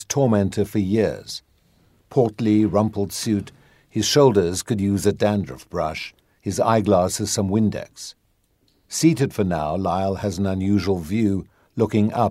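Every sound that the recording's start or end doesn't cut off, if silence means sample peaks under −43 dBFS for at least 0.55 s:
0:02.11–0:08.12

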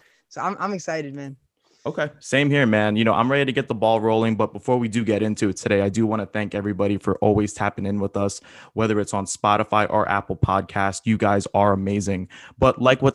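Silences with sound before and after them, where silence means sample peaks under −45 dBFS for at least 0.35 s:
0:01.35–0:01.86

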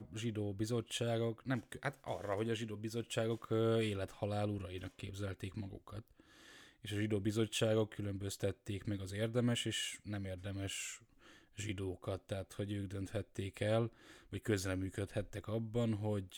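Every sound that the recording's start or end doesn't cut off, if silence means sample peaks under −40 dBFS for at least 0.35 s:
0:06.85–0:10.94
0:11.59–0:13.87

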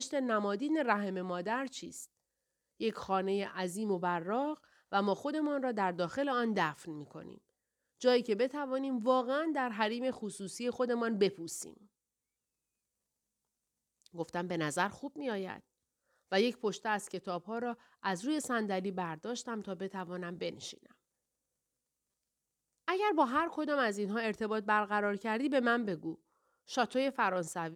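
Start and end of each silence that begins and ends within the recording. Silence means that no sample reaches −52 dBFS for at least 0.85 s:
0:11.77–0:14.02
0:20.91–0:22.88

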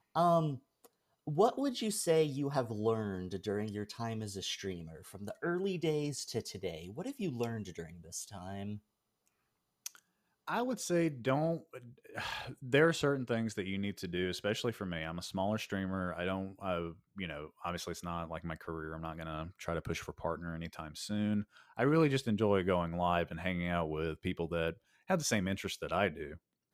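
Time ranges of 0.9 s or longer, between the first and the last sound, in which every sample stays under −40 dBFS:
0:08.76–0:09.86

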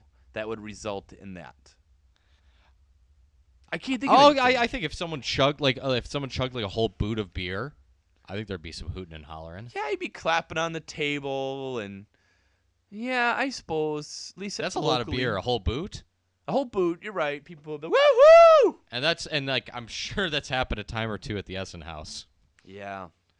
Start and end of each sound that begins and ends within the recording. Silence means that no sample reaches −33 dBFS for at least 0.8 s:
0:03.73–0:11.98

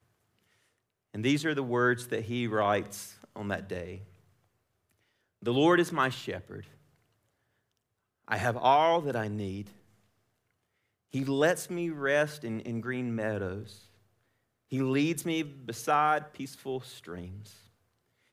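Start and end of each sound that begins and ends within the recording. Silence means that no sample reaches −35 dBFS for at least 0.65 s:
0:01.14–0:03.95
0:05.46–0:06.61
0:08.28–0:09.62
0:11.14–0:13.62
0:14.72–0:17.25

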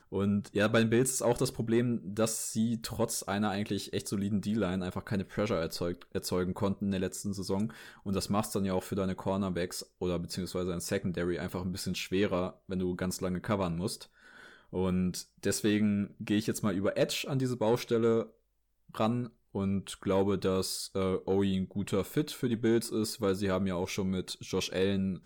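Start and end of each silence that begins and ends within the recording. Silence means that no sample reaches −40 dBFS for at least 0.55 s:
0:14.03–0:14.73
0:18.26–0:18.95

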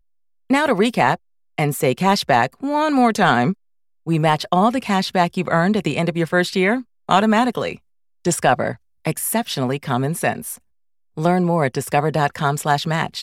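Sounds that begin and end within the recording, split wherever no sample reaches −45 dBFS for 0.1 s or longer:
0:00.50–0:01.17
0:01.58–0:03.54
0:04.07–0:06.83
0:07.09–0:07.78
0:08.25–0:08.77
0:09.05–0:10.58

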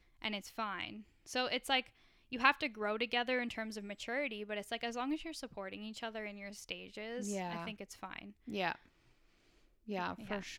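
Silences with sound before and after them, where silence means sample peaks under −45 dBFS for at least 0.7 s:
0:08.75–0:09.88

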